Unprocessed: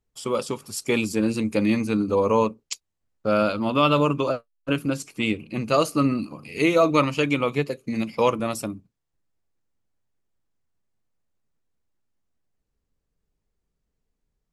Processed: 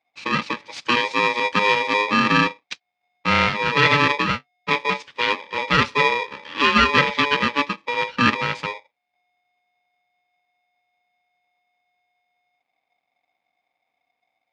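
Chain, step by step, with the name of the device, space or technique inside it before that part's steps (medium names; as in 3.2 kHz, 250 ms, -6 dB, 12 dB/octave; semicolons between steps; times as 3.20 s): ring modulator pedal into a guitar cabinet (polarity switched at an audio rate 720 Hz; cabinet simulation 98–4500 Hz, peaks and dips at 380 Hz -6 dB, 650 Hz -6 dB, 2.4 kHz +8 dB); 0.74–2.02 s: treble shelf 9 kHz +7 dB; trim +2.5 dB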